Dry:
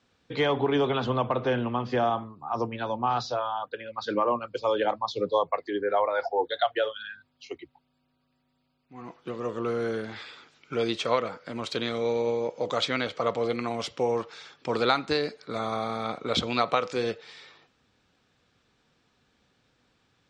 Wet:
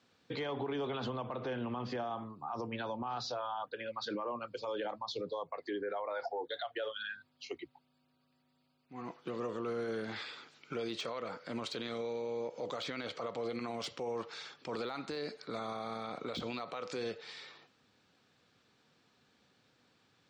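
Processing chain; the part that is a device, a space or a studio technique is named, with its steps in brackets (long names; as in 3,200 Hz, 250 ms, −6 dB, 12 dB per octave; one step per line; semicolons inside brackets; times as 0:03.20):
broadcast voice chain (high-pass filter 110 Hz; de-essing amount 80%; downward compressor 4 to 1, threshold −29 dBFS, peak gain reduction 9.5 dB; parametric band 4,400 Hz +3.5 dB 0.21 octaves; brickwall limiter −28 dBFS, peak gain reduction 11 dB)
level −1.5 dB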